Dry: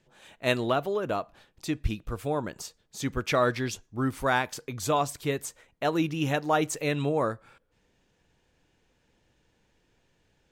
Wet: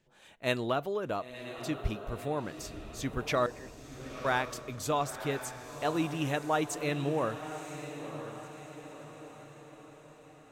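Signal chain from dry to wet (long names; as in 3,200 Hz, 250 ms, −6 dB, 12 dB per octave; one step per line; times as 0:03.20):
0:03.46–0:04.25: formant resonators in series e
feedback delay with all-pass diffusion 997 ms, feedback 50%, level −10 dB
level −4.5 dB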